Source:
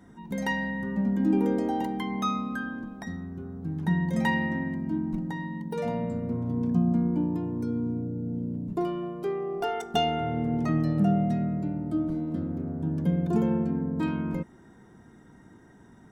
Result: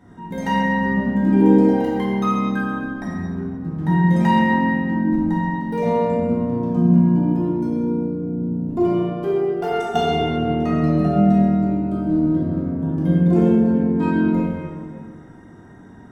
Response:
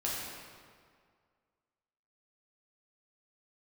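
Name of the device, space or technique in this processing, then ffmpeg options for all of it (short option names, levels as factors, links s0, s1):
swimming-pool hall: -filter_complex "[1:a]atrim=start_sample=2205[s0];[0:a][s0]afir=irnorm=-1:irlink=0,highshelf=f=4400:g=-7,volume=1.58"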